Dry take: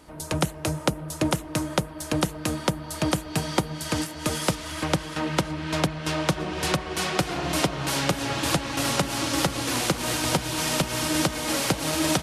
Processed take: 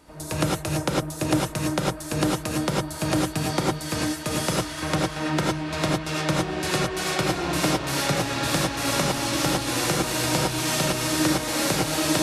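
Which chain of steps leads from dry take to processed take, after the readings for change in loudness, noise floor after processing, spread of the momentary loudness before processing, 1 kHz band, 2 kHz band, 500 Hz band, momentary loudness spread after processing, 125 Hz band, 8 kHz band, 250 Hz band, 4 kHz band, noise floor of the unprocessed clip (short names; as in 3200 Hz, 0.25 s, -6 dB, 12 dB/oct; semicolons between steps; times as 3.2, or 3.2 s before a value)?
+1.5 dB, -35 dBFS, 4 LU, +1.5 dB, +1.5 dB, +2.0 dB, 4 LU, +1.5 dB, +1.5 dB, +2.0 dB, +1.0 dB, -39 dBFS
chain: notch 3100 Hz, Q 17; non-linear reverb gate 0.13 s rising, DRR -3 dB; gain -3 dB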